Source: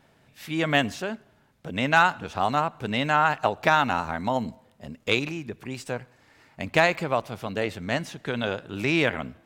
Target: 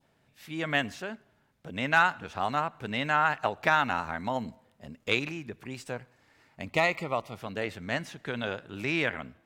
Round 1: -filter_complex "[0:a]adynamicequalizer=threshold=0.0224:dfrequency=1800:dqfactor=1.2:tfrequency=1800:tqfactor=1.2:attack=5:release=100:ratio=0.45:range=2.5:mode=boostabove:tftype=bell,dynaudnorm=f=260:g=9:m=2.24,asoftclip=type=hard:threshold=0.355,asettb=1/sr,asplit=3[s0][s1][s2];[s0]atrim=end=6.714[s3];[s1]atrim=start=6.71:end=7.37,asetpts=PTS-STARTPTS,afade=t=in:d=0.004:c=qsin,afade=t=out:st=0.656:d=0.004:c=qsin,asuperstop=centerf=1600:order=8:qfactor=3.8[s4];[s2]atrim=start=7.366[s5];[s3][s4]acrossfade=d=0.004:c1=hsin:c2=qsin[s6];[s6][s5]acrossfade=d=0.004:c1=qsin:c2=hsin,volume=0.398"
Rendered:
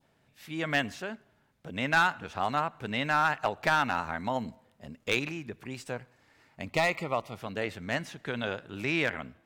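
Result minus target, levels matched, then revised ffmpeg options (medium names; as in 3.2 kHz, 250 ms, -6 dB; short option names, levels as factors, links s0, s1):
hard clipper: distortion +30 dB
-filter_complex "[0:a]adynamicequalizer=threshold=0.0224:dfrequency=1800:dqfactor=1.2:tfrequency=1800:tqfactor=1.2:attack=5:release=100:ratio=0.45:range=2.5:mode=boostabove:tftype=bell,dynaudnorm=f=260:g=9:m=2.24,asoftclip=type=hard:threshold=0.794,asettb=1/sr,asplit=3[s0][s1][s2];[s0]atrim=end=6.714[s3];[s1]atrim=start=6.71:end=7.37,asetpts=PTS-STARTPTS,afade=t=in:d=0.004:c=qsin,afade=t=out:st=0.656:d=0.004:c=qsin,asuperstop=centerf=1600:order=8:qfactor=3.8[s4];[s2]atrim=start=7.366[s5];[s3][s4]acrossfade=d=0.004:c1=hsin:c2=qsin[s6];[s6][s5]acrossfade=d=0.004:c1=qsin:c2=hsin,volume=0.398"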